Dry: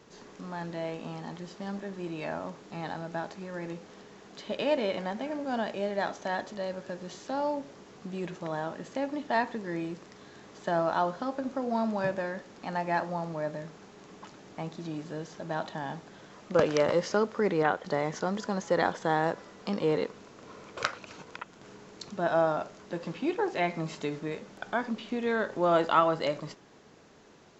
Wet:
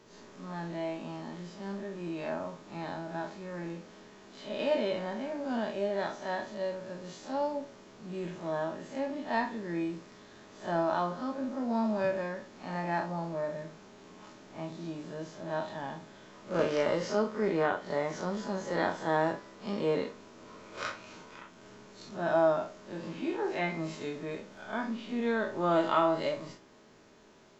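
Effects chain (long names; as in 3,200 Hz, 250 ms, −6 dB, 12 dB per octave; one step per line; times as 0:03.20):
spectrum smeared in time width 80 ms
on a send: convolution reverb RT60 0.15 s, pre-delay 3 ms, DRR 4.5 dB
on the sum: level −1.5 dB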